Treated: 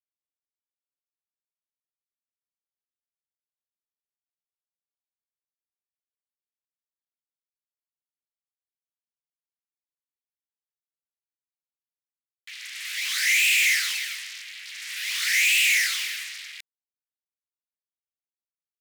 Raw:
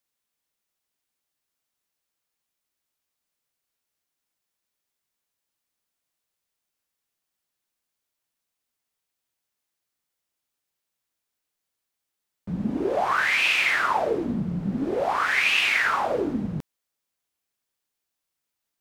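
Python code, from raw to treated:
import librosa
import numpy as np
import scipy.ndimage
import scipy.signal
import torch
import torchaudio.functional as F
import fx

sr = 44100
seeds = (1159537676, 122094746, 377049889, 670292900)

y = fx.fuzz(x, sr, gain_db=40.0, gate_db=-43.0)
y = scipy.signal.sosfilt(scipy.signal.ellip(4, 1.0, 80, 2000.0, 'highpass', fs=sr, output='sos'), y)
y = y * 10.0 ** (-5.0 / 20.0)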